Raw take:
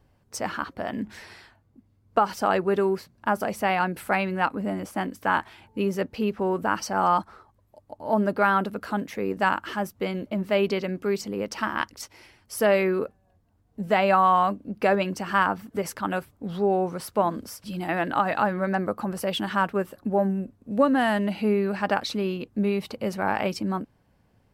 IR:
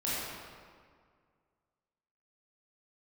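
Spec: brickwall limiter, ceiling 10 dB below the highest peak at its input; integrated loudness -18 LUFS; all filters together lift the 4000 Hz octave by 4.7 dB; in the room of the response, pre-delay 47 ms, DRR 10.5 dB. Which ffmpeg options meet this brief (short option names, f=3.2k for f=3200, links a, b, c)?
-filter_complex "[0:a]equalizer=f=4k:t=o:g=6.5,alimiter=limit=-17dB:level=0:latency=1,asplit=2[a][b];[1:a]atrim=start_sample=2205,adelay=47[c];[b][c]afir=irnorm=-1:irlink=0,volume=-18dB[d];[a][d]amix=inputs=2:normalize=0,volume=10dB"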